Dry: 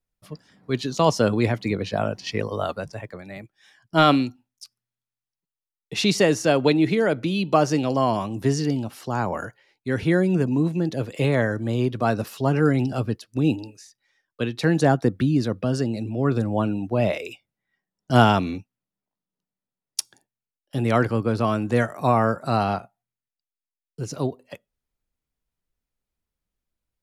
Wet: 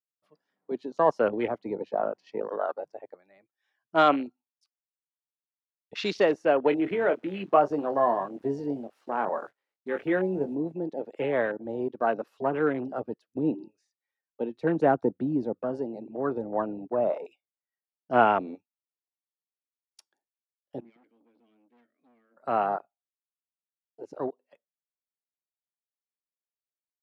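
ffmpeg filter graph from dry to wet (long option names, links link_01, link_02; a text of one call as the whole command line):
ffmpeg -i in.wav -filter_complex "[0:a]asettb=1/sr,asplit=3[link_01][link_02][link_03];[link_01]atrim=end=6.704[link_04];[link_02]atrim=start=6.7:end=10.55,asetpts=PTS-STARTPTS,afade=type=in:duration=0.004:curve=qsin,afade=type=out:start_time=3.846:duration=0.004:curve=qsin,acrusher=bits=8:dc=4:mix=0:aa=0.000001,asplit=2[link_05][link_06];[link_06]adelay=21,volume=-8dB[link_07];[link_05][link_07]amix=inputs=2:normalize=0,atrim=end_sample=169785[link_08];[link_03]atrim=start=10.546[link_09];[link_04][link_08]acrossfade=duration=0.004:curve1=hsin:curve2=qsin[link_10];[link_10][link_09]acrossfade=duration=0.004:curve1=qsin:curve2=hsin,asettb=1/sr,asplit=3[link_11][link_12][link_13];[link_11]atrim=end=13.244[link_14];[link_12]atrim=start=13.24:end=15.53,asetpts=PTS-STARTPTS,afade=type=in:duration=0.004:curve=qsin,afade=type=out:start_time=2.286:duration=0.004:curve=qsin,equalizer=frequency=170:width_type=o:width=1.6:gain=5,bandreject=frequency=1700:width=19[link_15];[link_13]atrim=start=15.526[link_16];[link_14][link_15]acrossfade=duration=0.004:curve1=hsin:curve2=qsin[link_17];[link_17][link_16]acrossfade=duration=0.004:curve1=qsin:curve2=hsin,asettb=1/sr,asplit=3[link_18][link_19][link_20];[link_18]atrim=end=20.804[link_21];[link_19]atrim=start=20.8:end=22.37,asetpts=PTS-STARTPTS,afade=type=in:duration=0.004:curve=qsin,afade=type=out:start_time=1.566:duration=0.004:curve=qsin,asplit=3[link_22][link_23][link_24];[link_22]bandpass=frequency=270:width_type=q:width=8,volume=0dB[link_25];[link_23]bandpass=frequency=2290:width_type=q:width=8,volume=-6dB[link_26];[link_24]bandpass=frequency=3010:width_type=q:width=8,volume=-9dB[link_27];[link_25][link_26][link_27]amix=inputs=3:normalize=0,bandreject=frequency=111.4:width_type=h:width=4,bandreject=frequency=222.8:width_type=h:width=4,bandreject=frequency=334.2:width_type=h:width=4,bandreject=frequency=445.6:width_type=h:width=4,bandreject=frequency=557:width_type=h:width=4,bandreject=frequency=668.4:width_type=h:width=4,bandreject=frequency=779.8:width_type=h:width=4,bandreject=frequency=891.2:width_type=h:width=4,aeval=exprs='(tanh(63.1*val(0)+0.35)-tanh(0.35))/63.1':channel_layout=same[link_28];[link_20]atrim=start=22.366[link_29];[link_21][link_28]acrossfade=duration=0.004:curve1=hsin:curve2=qsin[link_30];[link_30][link_29]acrossfade=duration=0.004:curve1=qsin:curve2=hsin,highpass=430,afwtdn=0.0316,lowpass=frequency=1300:poles=1" out.wav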